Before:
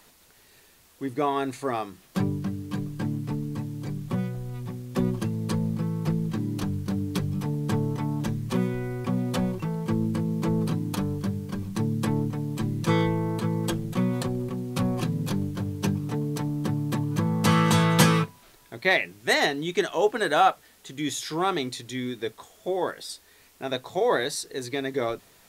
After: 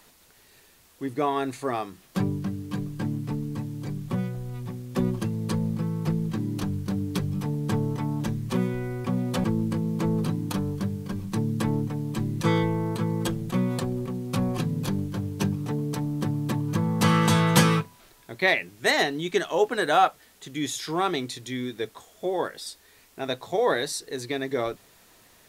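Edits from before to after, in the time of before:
0:09.44–0:09.87: remove

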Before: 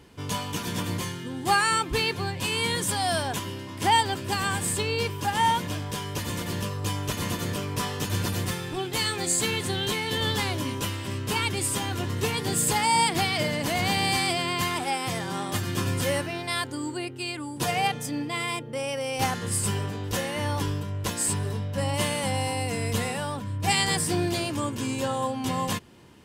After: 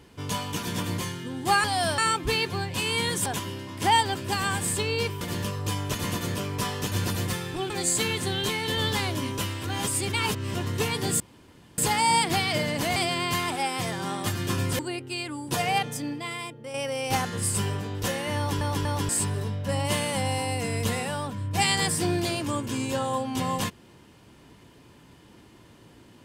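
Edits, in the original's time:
0:02.92–0:03.26: move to 0:01.64
0:05.21–0:06.39: remove
0:08.88–0:09.13: remove
0:11.07–0:11.98: reverse
0:12.63: splice in room tone 0.58 s
0:13.81–0:14.24: remove
0:16.07–0:16.88: remove
0:18.02–0:18.83: fade out quadratic, to −7 dB
0:20.46: stutter in place 0.24 s, 3 plays

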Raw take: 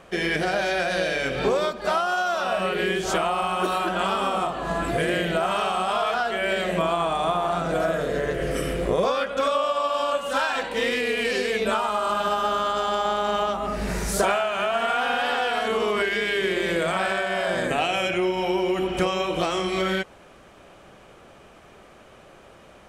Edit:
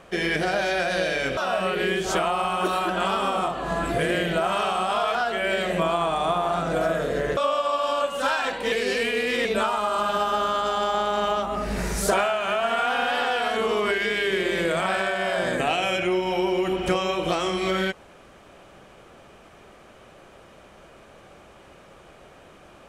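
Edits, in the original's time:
0:01.37–0:02.36: remove
0:08.36–0:09.48: remove
0:10.83–0:11.56: reverse

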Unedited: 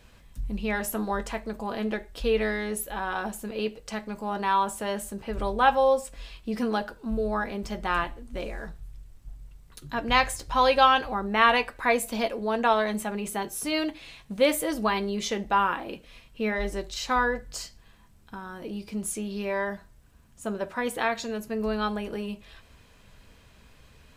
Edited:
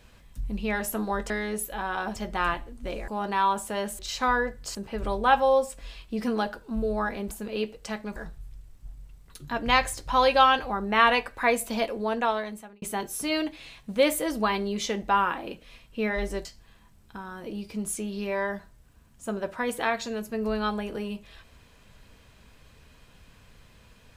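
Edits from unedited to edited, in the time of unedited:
0:01.30–0:02.48: remove
0:03.34–0:04.19: swap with 0:07.66–0:08.58
0:12.44–0:13.24: fade out
0:16.87–0:17.63: move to 0:05.10

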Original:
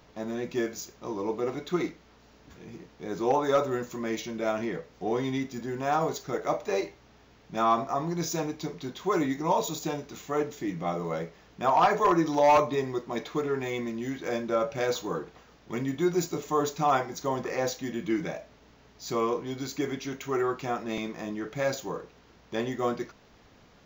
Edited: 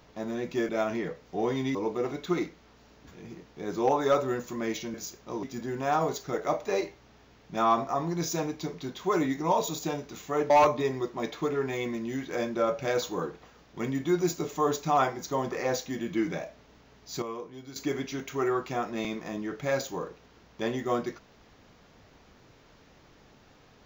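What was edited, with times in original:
0:00.69–0:01.18: swap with 0:04.37–0:05.43
0:10.50–0:12.43: remove
0:19.15–0:19.69: clip gain −10 dB

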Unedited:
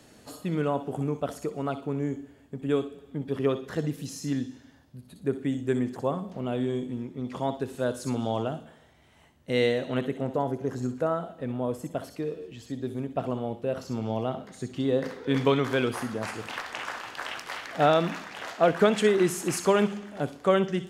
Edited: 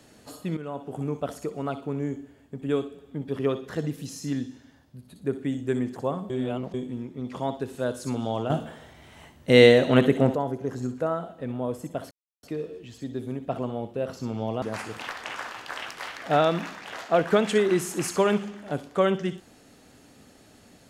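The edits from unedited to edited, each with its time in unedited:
0:00.57–0:01.13: fade in, from −12.5 dB
0:06.30–0:06.74: reverse
0:08.50–0:10.35: clip gain +10 dB
0:12.11: splice in silence 0.32 s
0:14.30–0:16.11: remove

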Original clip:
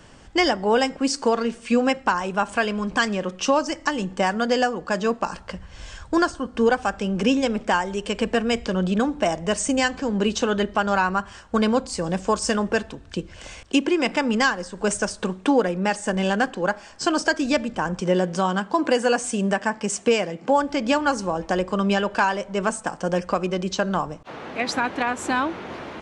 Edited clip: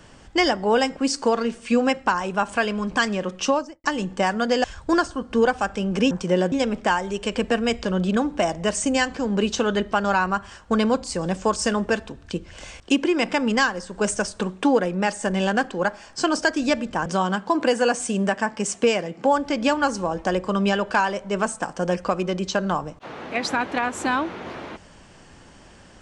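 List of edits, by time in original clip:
0:03.44–0:03.84: fade out and dull
0:04.64–0:05.88: remove
0:17.89–0:18.30: move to 0:07.35

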